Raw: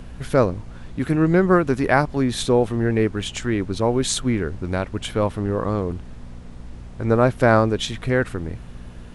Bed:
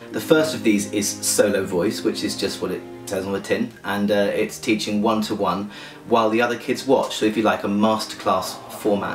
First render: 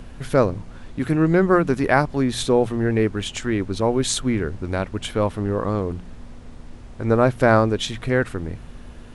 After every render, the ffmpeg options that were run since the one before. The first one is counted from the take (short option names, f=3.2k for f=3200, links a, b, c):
-af "bandreject=f=60:t=h:w=4,bandreject=f=120:t=h:w=4,bandreject=f=180:t=h:w=4"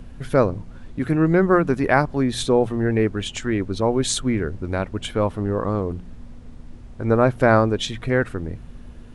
-af "afftdn=nr=6:nf=-40"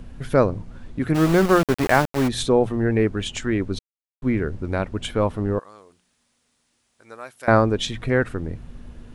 -filter_complex "[0:a]asplit=3[a][b][c];[a]afade=t=out:st=1.14:d=0.02[d];[b]aeval=exprs='val(0)*gte(abs(val(0)),0.0794)':c=same,afade=t=in:st=1.14:d=0.02,afade=t=out:st=2.27:d=0.02[e];[c]afade=t=in:st=2.27:d=0.02[f];[d][e][f]amix=inputs=3:normalize=0,asettb=1/sr,asplit=3[g][h][i];[g]atrim=end=5.594[j];[h]atrim=start=5.59:end=7.48,asetpts=PTS-STARTPTS,afade=t=in:d=0.004:c=qsin,afade=t=out:st=1.886:d=0.004:c=qsin,aderivative[k];[i]atrim=start=7.476[l];[j][k]acrossfade=d=0.004:c1=hsin:c2=qsin[m];[m][l]acrossfade=d=0.004:c1=qsin:c2=hsin,asplit=3[n][o][p];[n]atrim=end=3.79,asetpts=PTS-STARTPTS,afade=t=out:st=3.786:d=0.004:c=hsin[q];[o]atrim=start=3.79:end=4.22,asetpts=PTS-STARTPTS,volume=0[r];[p]atrim=start=4.22,asetpts=PTS-STARTPTS,afade=t=in:d=0.004:c=hsin[s];[q][r][s]concat=n=3:v=0:a=1"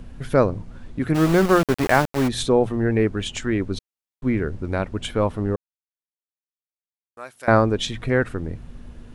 -filter_complex "[0:a]asplit=3[a][b][c];[a]atrim=end=5.56,asetpts=PTS-STARTPTS,afade=t=out:st=5.556:d=0.004:c=hsin[d];[b]atrim=start=5.56:end=7.17,asetpts=PTS-STARTPTS,volume=0[e];[c]atrim=start=7.17,asetpts=PTS-STARTPTS,afade=t=in:d=0.004:c=hsin[f];[d][e][f]concat=n=3:v=0:a=1"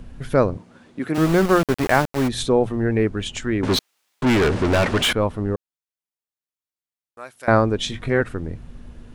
-filter_complex "[0:a]asettb=1/sr,asplit=3[a][b][c];[a]atrim=end=0.574[d];[b]atrim=start=0.57:end=1.18,asetpts=PTS-STARTPTS,afade=t=in:d=0.004:c=qsin,afade=t=out:st=0.606:d=0.004:c=qsin,highpass=230[e];[c]atrim=start=1.176[f];[d][e]acrossfade=d=0.004:c1=hsin:c2=qsin[g];[g][f]acrossfade=d=0.004:c1=qsin:c2=hsin,asettb=1/sr,asplit=3[h][i][j];[h]atrim=end=3.634[k];[i]atrim=start=3.63:end=5.13,asetpts=PTS-STARTPTS,afade=t=in:d=0.004:c=qsin,afade=t=out:st=1.496:d=0.004:c=qsin,asplit=2[l][m];[m]highpass=f=720:p=1,volume=34dB,asoftclip=type=tanh:threshold=-10.5dB[n];[l][n]amix=inputs=2:normalize=0,lowpass=f=5k:p=1,volume=-6dB[o];[j]atrim=start=5.126[p];[k][o]acrossfade=d=0.004:c1=hsin:c2=qsin[q];[q][p]acrossfade=d=0.004:c1=qsin:c2=hsin,asettb=1/sr,asplit=3[r][s][t];[r]atrim=end=7.814[u];[s]atrim=start=7.81:end=8.21,asetpts=PTS-STARTPTS,afade=t=in:d=0.004:c=qsin,afade=t=out:st=0.396:d=0.004:c=qsin,asplit=2[v][w];[w]adelay=21,volume=-7.5dB[x];[v][x]amix=inputs=2:normalize=0,atrim=end_sample=17640[y];[t]atrim=start=8.206[z];[u][y]acrossfade=d=0.004:c1=hsin:c2=qsin[aa];[aa][z]acrossfade=d=0.004:c1=qsin:c2=hsin"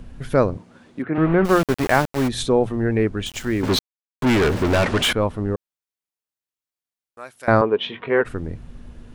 -filter_complex "[0:a]asplit=3[a][b][c];[a]afade=t=out:st=1.01:d=0.02[d];[b]lowpass=f=2.3k:w=0.5412,lowpass=f=2.3k:w=1.3066,afade=t=in:st=1.01:d=0.02,afade=t=out:st=1.44:d=0.02[e];[c]afade=t=in:st=1.44:d=0.02[f];[d][e][f]amix=inputs=3:normalize=0,asettb=1/sr,asplit=3[g][h][i];[g]atrim=end=3.264[j];[h]atrim=start=3.26:end=4.75,asetpts=PTS-STARTPTS,afade=t=in:d=0.004:c=qsin,afade=t=out:st=1.486:d=0.004:c=qsin,aeval=exprs='val(0)*gte(abs(val(0)),0.02)':c=same[k];[i]atrim=start=4.746[l];[j][k]acrossfade=d=0.004:c1=hsin:c2=qsin[m];[m][l]acrossfade=d=0.004:c1=qsin:c2=hsin,asettb=1/sr,asplit=3[n][o][p];[n]atrim=end=7.614[q];[o]atrim=start=7.61:end=8.25,asetpts=PTS-STARTPTS,afade=t=in:d=0.004:c=qsin,afade=t=out:st=0.636:d=0.004:c=qsin,highpass=250,equalizer=f=290:t=q:w=4:g=-5,equalizer=f=430:t=q:w=4:g=7,equalizer=f=1k:t=q:w=4:g=9,equalizer=f=2.9k:t=q:w=4:g=6,lowpass=f=3.1k:w=0.5412,lowpass=f=3.1k:w=1.3066[r];[p]atrim=start=8.246[s];[q][r]acrossfade=d=0.004:c1=hsin:c2=qsin[t];[t][s]acrossfade=d=0.004:c1=qsin:c2=hsin"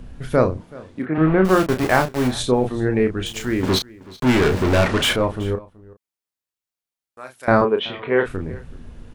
-filter_complex "[0:a]asplit=2[a][b];[b]adelay=32,volume=-6.5dB[c];[a][c]amix=inputs=2:normalize=0,aecho=1:1:377:0.0841"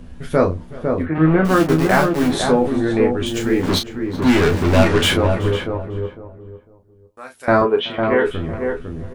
-filter_complex "[0:a]asplit=2[a][b];[b]adelay=12,volume=-4.5dB[c];[a][c]amix=inputs=2:normalize=0,asplit=2[d][e];[e]adelay=503,lowpass=f=1.1k:p=1,volume=-4dB,asplit=2[f][g];[g]adelay=503,lowpass=f=1.1k:p=1,volume=0.25,asplit=2[h][i];[i]adelay=503,lowpass=f=1.1k:p=1,volume=0.25[j];[f][h][j]amix=inputs=3:normalize=0[k];[d][k]amix=inputs=2:normalize=0"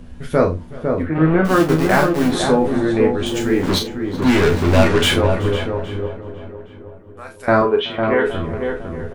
-filter_complex "[0:a]asplit=2[a][b];[b]adelay=46,volume=-11.5dB[c];[a][c]amix=inputs=2:normalize=0,asplit=2[d][e];[e]adelay=817,lowpass=f=1.5k:p=1,volume=-15.5dB,asplit=2[f][g];[g]adelay=817,lowpass=f=1.5k:p=1,volume=0.38,asplit=2[h][i];[i]adelay=817,lowpass=f=1.5k:p=1,volume=0.38[j];[d][f][h][j]amix=inputs=4:normalize=0"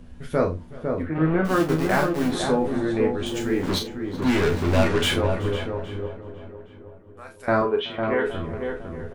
-af "volume=-6.5dB"